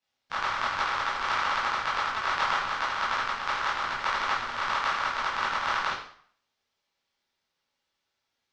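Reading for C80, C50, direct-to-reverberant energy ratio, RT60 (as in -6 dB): 7.5 dB, 3.5 dB, -9.5 dB, 0.55 s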